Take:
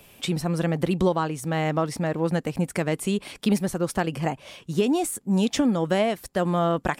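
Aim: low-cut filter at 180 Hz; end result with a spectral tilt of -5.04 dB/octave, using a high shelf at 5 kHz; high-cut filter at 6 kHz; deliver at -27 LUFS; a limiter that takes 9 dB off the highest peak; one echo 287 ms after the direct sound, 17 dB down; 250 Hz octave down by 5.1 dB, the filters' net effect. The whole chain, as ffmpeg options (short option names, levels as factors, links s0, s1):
-af "highpass=180,lowpass=6000,equalizer=f=250:t=o:g=-5,highshelf=f=5000:g=-6,alimiter=limit=0.133:level=0:latency=1,aecho=1:1:287:0.141,volume=1.41"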